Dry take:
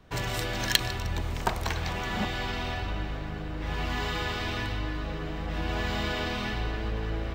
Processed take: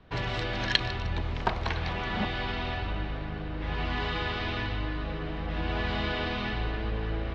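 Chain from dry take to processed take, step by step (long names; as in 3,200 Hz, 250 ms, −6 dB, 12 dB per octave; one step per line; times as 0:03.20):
low-pass filter 4,400 Hz 24 dB per octave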